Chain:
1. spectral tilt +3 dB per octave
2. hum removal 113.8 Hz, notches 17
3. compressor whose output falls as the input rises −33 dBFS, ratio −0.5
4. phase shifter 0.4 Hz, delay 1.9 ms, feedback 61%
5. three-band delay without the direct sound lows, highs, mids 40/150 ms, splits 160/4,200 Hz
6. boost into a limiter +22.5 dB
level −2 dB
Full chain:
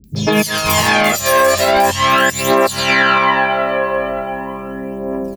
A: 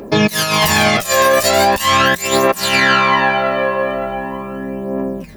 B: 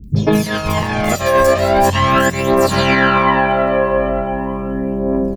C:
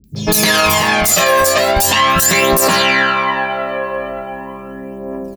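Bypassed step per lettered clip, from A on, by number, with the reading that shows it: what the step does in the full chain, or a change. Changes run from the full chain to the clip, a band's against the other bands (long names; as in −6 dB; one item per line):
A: 5, 4 kHz band +1.5 dB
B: 1, 125 Hz band +8.5 dB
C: 3, change in momentary loudness spread +5 LU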